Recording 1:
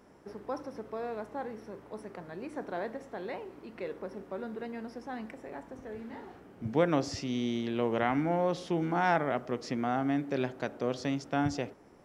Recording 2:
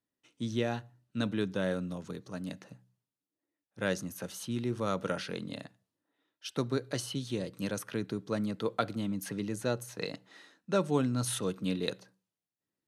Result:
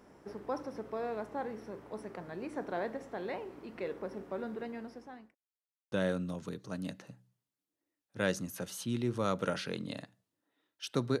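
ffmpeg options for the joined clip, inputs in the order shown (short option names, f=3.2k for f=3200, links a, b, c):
-filter_complex "[0:a]apad=whole_dur=11.2,atrim=end=11.2,asplit=2[a][b];[a]atrim=end=5.35,asetpts=PTS-STARTPTS,afade=t=out:st=4.27:d=1.08:c=qsin[c];[b]atrim=start=5.35:end=5.92,asetpts=PTS-STARTPTS,volume=0[d];[1:a]atrim=start=1.54:end=6.82,asetpts=PTS-STARTPTS,afade=t=in:d=0.004:c=hsin[e];[c][d][e]concat=n=3:v=0:a=1"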